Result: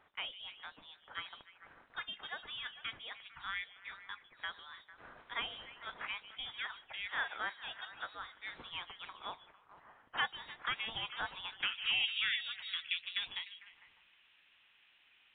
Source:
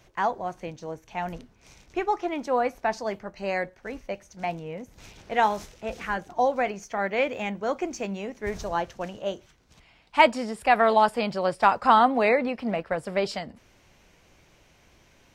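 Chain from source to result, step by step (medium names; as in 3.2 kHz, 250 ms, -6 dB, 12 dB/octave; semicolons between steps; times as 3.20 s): compression 2.5:1, threshold -24 dBFS, peak gain reduction 8.5 dB; repeats whose band climbs or falls 150 ms, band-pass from 880 Hz, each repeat 0.7 oct, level -9 dB; band-pass sweep 3.1 kHz -> 1.3 kHz, 11.35–12.45 s; frequency inversion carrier 4 kHz; trim +1.5 dB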